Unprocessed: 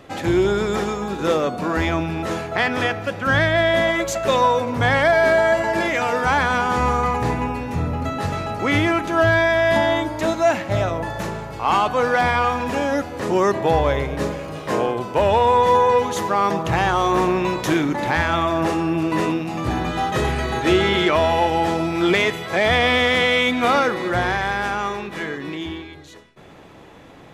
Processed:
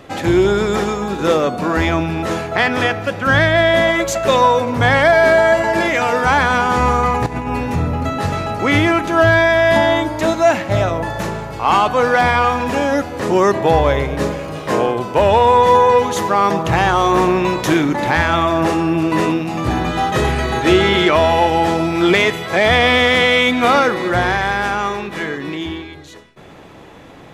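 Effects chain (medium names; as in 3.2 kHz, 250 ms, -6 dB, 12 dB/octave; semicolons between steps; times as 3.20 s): 7.26–7.76 s: compressor with a negative ratio -25 dBFS, ratio -0.5; trim +4.5 dB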